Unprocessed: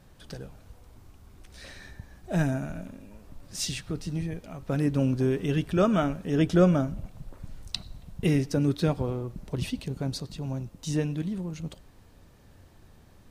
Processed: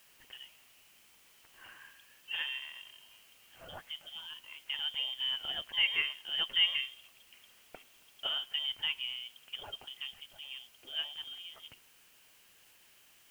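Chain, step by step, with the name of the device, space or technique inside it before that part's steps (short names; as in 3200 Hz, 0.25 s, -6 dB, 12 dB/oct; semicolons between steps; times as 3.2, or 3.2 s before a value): scrambled radio voice (BPF 400–2700 Hz; inverted band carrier 3400 Hz; white noise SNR 24 dB); gain -4 dB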